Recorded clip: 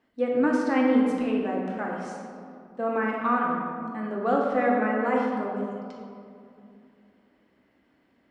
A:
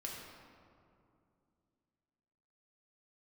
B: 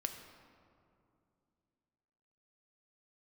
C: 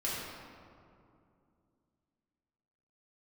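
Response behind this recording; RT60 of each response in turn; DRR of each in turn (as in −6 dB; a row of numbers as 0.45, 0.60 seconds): A; 2.5, 2.6, 2.5 seconds; −2.5, 5.5, −8.0 decibels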